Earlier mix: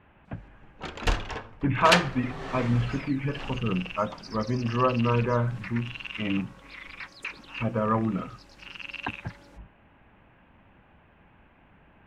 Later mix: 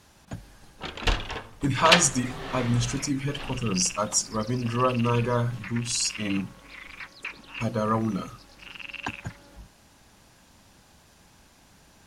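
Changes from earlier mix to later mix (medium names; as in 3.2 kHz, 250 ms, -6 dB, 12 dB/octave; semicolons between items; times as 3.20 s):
speech: remove steep low-pass 2.8 kHz 48 dB/octave; first sound: add peaking EQ 3.5 kHz +6 dB 0.92 oct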